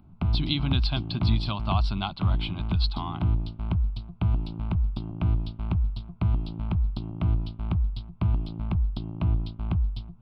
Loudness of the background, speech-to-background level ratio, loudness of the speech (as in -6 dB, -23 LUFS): -29.0 LUFS, -2.5 dB, -31.5 LUFS